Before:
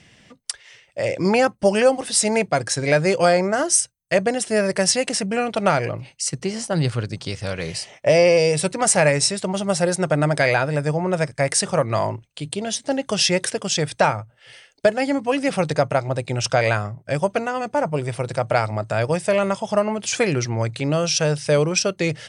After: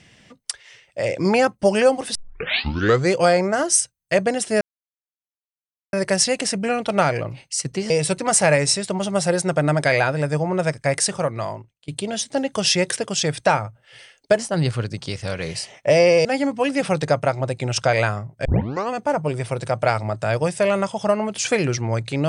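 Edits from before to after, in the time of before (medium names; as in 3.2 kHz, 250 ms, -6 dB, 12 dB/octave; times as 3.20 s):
2.15 s: tape start 0.98 s
4.61 s: insert silence 1.32 s
6.58–8.44 s: move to 14.93 s
11.49–12.42 s: fade out linear, to -23.5 dB
17.13 s: tape start 0.45 s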